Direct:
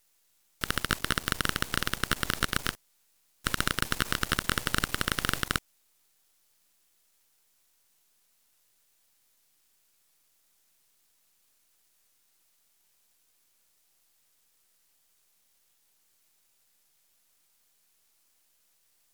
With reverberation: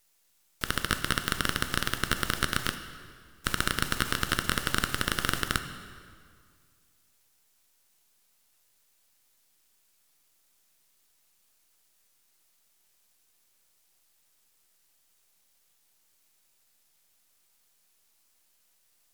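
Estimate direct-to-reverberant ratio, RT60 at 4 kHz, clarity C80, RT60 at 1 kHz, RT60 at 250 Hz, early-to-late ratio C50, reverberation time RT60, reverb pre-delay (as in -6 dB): 8.0 dB, 1.6 s, 11.0 dB, 2.0 s, 2.2 s, 10.0 dB, 2.0 s, 3 ms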